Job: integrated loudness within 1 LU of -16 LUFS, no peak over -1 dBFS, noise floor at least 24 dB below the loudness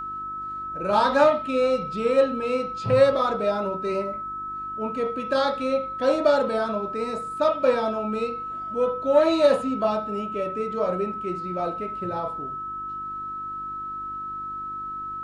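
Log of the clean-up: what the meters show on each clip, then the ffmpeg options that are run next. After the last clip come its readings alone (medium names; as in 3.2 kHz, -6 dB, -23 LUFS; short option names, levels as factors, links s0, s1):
hum 50 Hz; highest harmonic 350 Hz; hum level -48 dBFS; steady tone 1.3 kHz; tone level -30 dBFS; loudness -25.0 LUFS; peak level -6.0 dBFS; loudness target -16.0 LUFS
-> -af "bandreject=f=50:t=h:w=4,bandreject=f=100:t=h:w=4,bandreject=f=150:t=h:w=4,bandreject=f=200:t=h:w=4,bandreject=f=250:t=h:w=4,bandreject=f=300:t=h:w=4,bandreject=f=350:t=h:w=4"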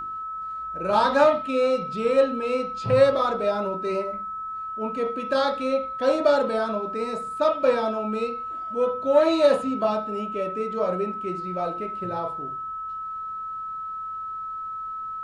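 hum not found; steady tone 1.3 kHz; tone level -30 dBFS
-> -af "bandreject=f=1300:w=30"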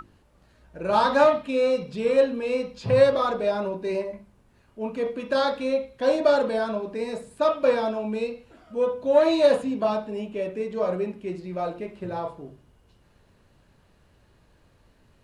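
steady tone not found; loudness -24.5 LUFS; peak level -6.5 dBFS; loudness target -16.0 LUFS
-> -af "volume=2.66,alimiter=limit=0.891:level=0:latency=1"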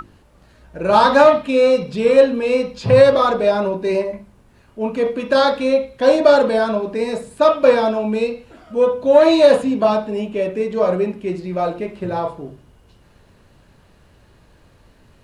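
loudness -16.5 LUFS; peak level -1.0 dBFS; noise floor -52 dBFS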